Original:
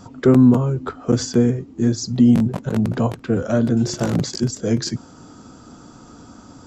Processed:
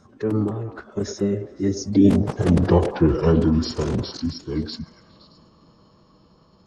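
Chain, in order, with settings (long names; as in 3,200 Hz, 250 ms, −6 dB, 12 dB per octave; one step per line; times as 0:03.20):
source passing by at 0:02.77, 38 m/s, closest 20 metres
phase-vocoder pitch shift with formants kept −5 semitones
echo through a band-pass that steps 103 ms, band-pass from 530 Hz, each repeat 0.7 octaves, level −6 dB
level +4 dB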